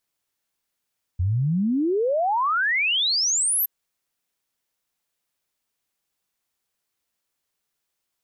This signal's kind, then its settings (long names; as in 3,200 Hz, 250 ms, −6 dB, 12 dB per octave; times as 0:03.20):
exponential sine sweep 84 Hz → 13,000 Hz 2.47 s −19 dBFS